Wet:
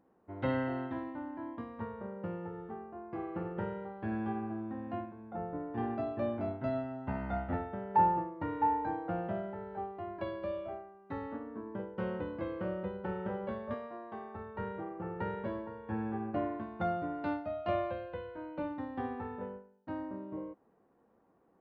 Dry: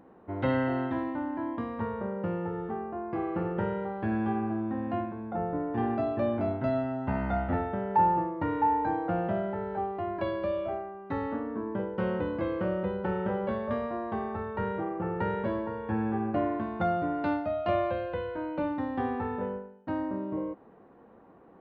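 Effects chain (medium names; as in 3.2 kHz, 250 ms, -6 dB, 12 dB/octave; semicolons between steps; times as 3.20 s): 13.74–14.35 s: high-pass 310 Hz 6 dB/octave; upward expansion 1.5:1, over -44 dBFS; trim -2 dB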